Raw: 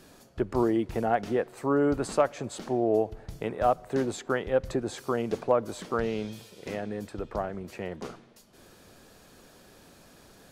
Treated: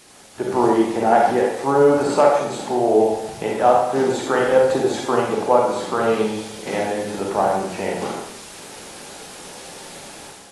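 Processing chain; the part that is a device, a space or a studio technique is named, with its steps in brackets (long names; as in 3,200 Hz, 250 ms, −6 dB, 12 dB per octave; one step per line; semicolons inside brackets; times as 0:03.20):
filmed off a television (band-pass filter 200–7,400 Hz; parametric band 850 Hz +10 dB 0.3 octaves; convolution reverb RT60 0.75 s, pre-delay 34 ms, DRR −1.5 dB; white noise bed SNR 21 dB; automatic gain control gain up to 9 dB; level −1 dB; AAC 32 kbit/s 24,000 Hz)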